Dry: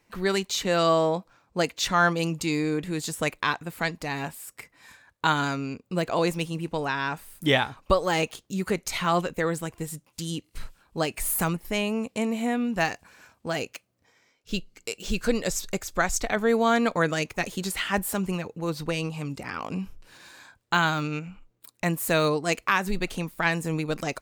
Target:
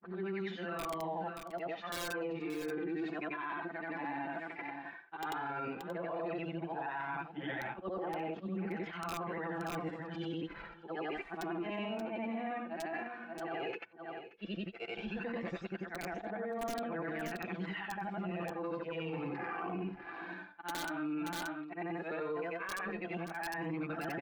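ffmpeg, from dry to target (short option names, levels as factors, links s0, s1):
-af "afftfilt=real='re':imag='-im':win_size=8192:overlap=0.75,agate=range=0.0224:threshold=0.00178:ratio=3:detection=peak,highpass=140,equalizer=f=150:t=q:w=4:g=-7,equalizer=f=320:t=q:w=4:g=-6,equalizer=f=510:t=q:w=4:g=-4,equalizer=f=760:t=q:w=4:g=9,equalizer=f=1600:t=q:w=4:g=5,lowpass=f=2600:w=0.5412,lowpass=f=2600:w=1.3066,aecho=1:1:5.9:0.62,aeval=exprs='(mod(4.73*val(0)+1,2)-1)/4.73':c=same,aphaser=in_gain=1:out_gain=1:delay=3.5:decay=0.52:speed=0.12:type=triangular,equalizer=f=330:w=1.6:g=10,aecho=1:1:579:0.112,areverse,acompressor=threshold=0.0158:ratio=10,areverse,alimiter=level_in=2.99:limit=0.0631:level=0:latency=1:release=12,volume=0.335,volume=1.33"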